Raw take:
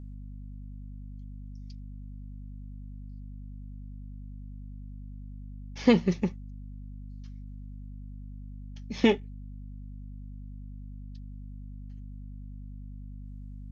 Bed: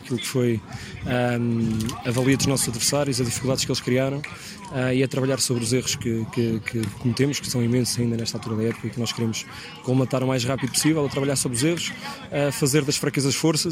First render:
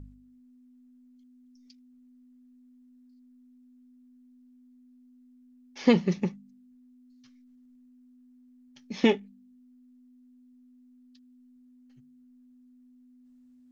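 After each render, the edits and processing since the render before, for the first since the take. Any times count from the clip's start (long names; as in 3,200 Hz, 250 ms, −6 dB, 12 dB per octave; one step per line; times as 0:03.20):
hum removal 50 Hz, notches 4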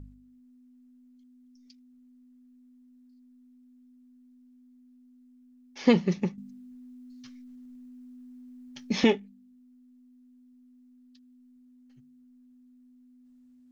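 0:06.38–0:09.04: clip gain +9.5 dB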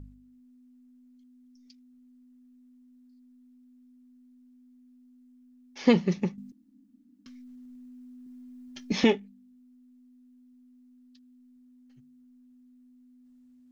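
0:06.52–0:07.26: fill with room tone
0:08.26–0:08.92: comb filter 2.9 ms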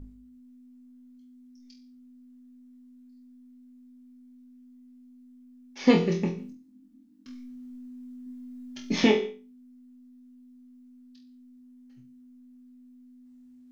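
flutter between parallel walls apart 4 metres, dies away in 0.32 s
reverb whose tail is shaped and stops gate 210 ms falling, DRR 10.5 dB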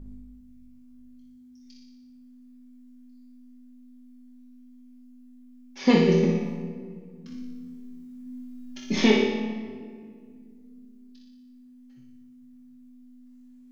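flutter between parallel walls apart 10.2 metres, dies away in 0.79 s
rectangular room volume 3,800 cubic metres, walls mixed, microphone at 1.1 metres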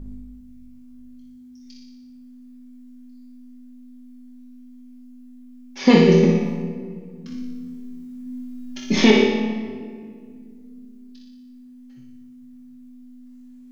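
level +6.5 dB
brickwall limiter −2 dBFS, peak gain reduction 2 dB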